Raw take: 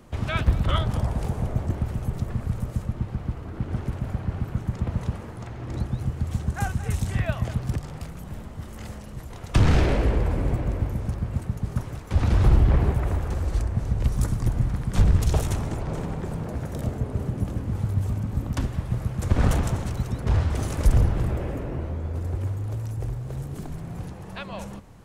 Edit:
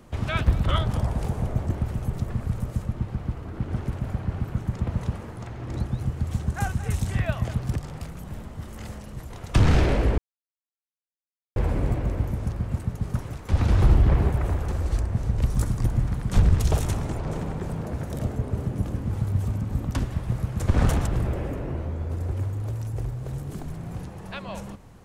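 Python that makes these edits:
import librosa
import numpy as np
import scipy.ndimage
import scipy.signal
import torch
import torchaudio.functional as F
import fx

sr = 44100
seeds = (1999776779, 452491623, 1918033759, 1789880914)

y = fx.edit(x, sr, fx.insert_silence(at_s=10.18, length_s=1.38),
    fx.cut(start_s=19.69, length_s=1.42), tone=tone)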